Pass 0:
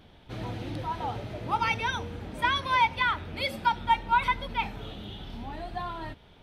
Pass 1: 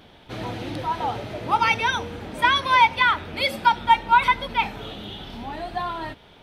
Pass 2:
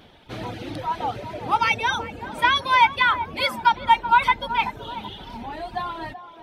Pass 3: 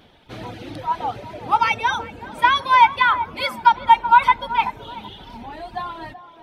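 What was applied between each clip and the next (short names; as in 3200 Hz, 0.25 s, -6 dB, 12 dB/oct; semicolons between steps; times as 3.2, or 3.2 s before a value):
low shelf 160 Hz -9.5 dB; gain +7.5 dB
reverb removal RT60 0.79 s; narrowing echo 0.381 s, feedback 45%, band-pass 660 Hz, level -11 dB
dynamic EQ 1000 Hz, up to +6 dB, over -28 dBFS, Q 1.2; on a send at -23 dB: reverb RT60 1.3 s, pre-delay 4 ms; on the sum: gain -1.5 dB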